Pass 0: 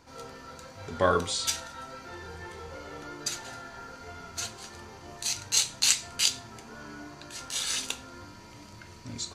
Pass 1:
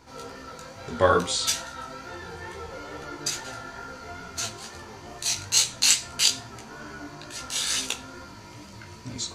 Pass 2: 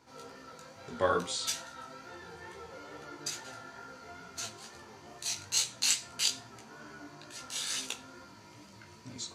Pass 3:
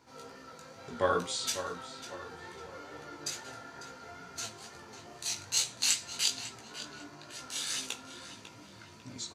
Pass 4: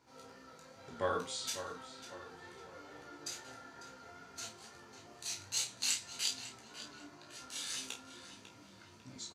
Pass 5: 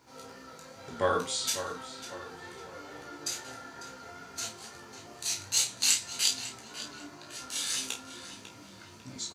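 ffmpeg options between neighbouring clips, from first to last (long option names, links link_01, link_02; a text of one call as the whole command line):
ffmpeg -i in.wav -af "flanger=delay=15:depth=5:speed=2.3,volume=7dB" out.wav
ffmpeg -i in.wav -af "highpass=110,volume=-8.5dB" out.wav
ffmpeg -i in.wav -filter_complex "[0:a]asplit=2[link_01][link_02];[link_02]adelay=548,lowpass=frequency=3700:poles=1,volume=-10dB,asplit=2[link_03][link_04];[link_04]adelay=548,lowpass=frequency=3700:poles=1,volume=0.42,asplit=2[link_05][link_06];[link_06]adelay=548,lowpass=frequency=3700:poles=1,volume=0.42,asplit=2[link_07][link_08];[link_08]adelay=548,lowpass=frequency=3700:poles=1,volume=0.42[link_09];[link_01][link_03][link_05][link_07][link_09]amix=inputs=5:normalize=0" out.wav
ffmpeg -i in.wav -filter_complex "[0:a]asplit=2[link_01][link_02];[link_02]adelay=31,volume=-7dB[link_03];[link_01][link_03]amix=inputs=2:normalize=0,volume=-6.5dB" out.wav
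ffmpeg -i in.wav -af "highshelf=frequency=8100:gain=5.5,volume=7dB" out.wav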